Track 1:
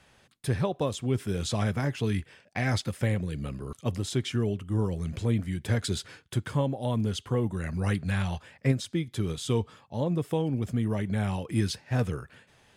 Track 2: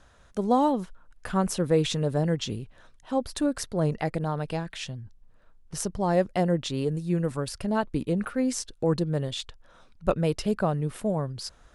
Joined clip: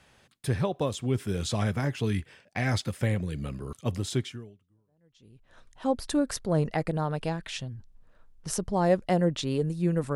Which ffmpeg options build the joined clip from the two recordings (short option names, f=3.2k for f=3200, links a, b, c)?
-filter_complex "[0:a]apad=whole_dur=10.15,atrim=end=10.15,atrim=end=5.58,asetpts=PTS-STARTPTS[a];[1:a]atrim=start=1.47:end=7.42,asetpts=PTS-STARTPTS[b];[a][b]acrossfade=d=1.38:c1=exp:c2=exp"